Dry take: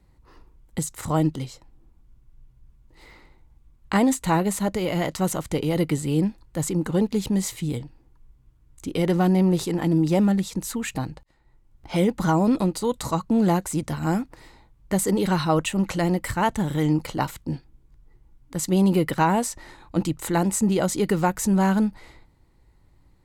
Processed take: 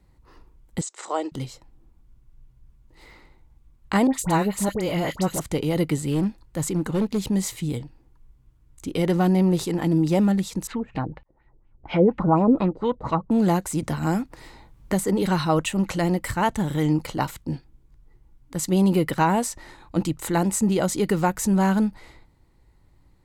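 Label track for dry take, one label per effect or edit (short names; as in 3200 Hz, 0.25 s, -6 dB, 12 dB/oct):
0.810000	1.320000	Chebyshev band-pass 360–8000 Hz, order 4
4.070000	5.400000	dispersion highs, late by 65 ms, half as late at 1500 Hz
6.050000	7.210000	overloaded stage gain 17.5 dB
10.670000	13.310000	LFO low-pass sine 4.2 Hz 420–2900 Hz
13.820000	15.220000	three-band squash depth 40%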